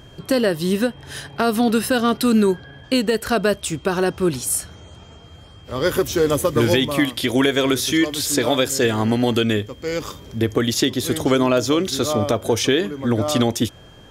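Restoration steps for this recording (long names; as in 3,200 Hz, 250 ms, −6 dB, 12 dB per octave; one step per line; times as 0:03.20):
notch filter 3,200 Hz, Q 30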